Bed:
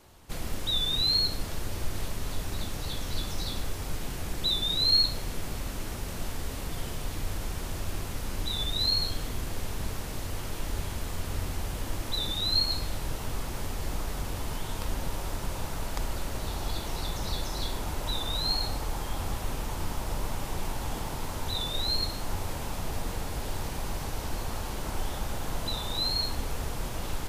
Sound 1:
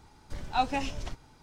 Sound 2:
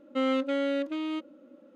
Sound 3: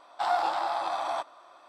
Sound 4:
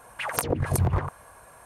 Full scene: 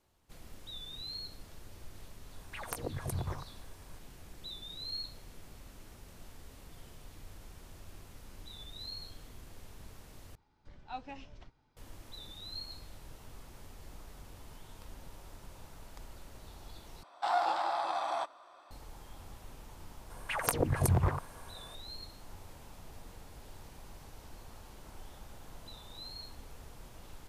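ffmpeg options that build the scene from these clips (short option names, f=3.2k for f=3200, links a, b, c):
-filter_complex "[4:a]asplit=2[a][b];[0:a]volume=-17.5dB[c];[1:a]lowpass=4.3k[d];[c]asplit=3[e][f][g];[e]atrim=end=10.354[h];[d]atrim=end=1.42,asetpts=PTS-STARTPTS,volume=-15.5dB[i];[f]atrim=start=11.766:end=17.034[j];[3:a]atrim=end=1.68,asetpts=PTS-STARTPTS,volume=-3.5dB[k];[g]atrim=start=18.706[l];[a]atrim=end=1.65,asetpts=PTS-STARTPTS,volume=-13dB,afade=t=in:d=0.004:c=hsin,afade=t=out:st=1.646:d=0.004:c=hsin,adelay=2340[m];[b]atrim=end=1.65,asetpts=PTS-STARTPTS,volume=-4dB,afade=t=in:d=0.004:c=hsin,afade=t=out:st=1.646:d=0.004:c=hsin,adelay=20100[n];[h][i]acrossfade=d=0.004:c1=hsin:c2=hsin[o];[o][j]acrossfade=d=0.004:c1=hsin:c2=hsin[p];[p][k]acrossfade=d=0.004:c1=hsin:c2=hsin[q];[q][l]acrossfade=d=0.004:c1=hsin:c2=hsin[r];[r][m][n]amix=inputs=3:normalize=0"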